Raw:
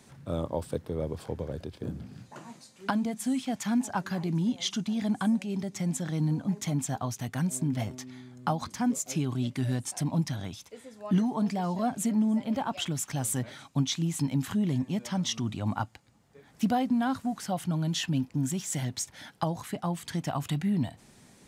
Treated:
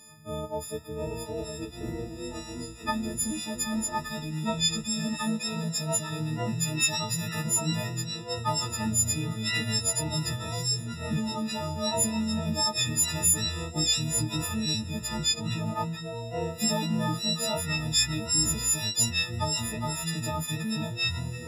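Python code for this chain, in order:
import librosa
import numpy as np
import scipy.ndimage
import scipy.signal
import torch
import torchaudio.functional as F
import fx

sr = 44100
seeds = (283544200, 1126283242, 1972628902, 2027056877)

y = fx.freq_snap(x, sr, grid_st=6)
y = fx.echo_pitch(y, sr, ms=630, semitones=-5, count=2, db_per_echo=-3.0)
y = y * librosa.db_to_amplitude(-4.5)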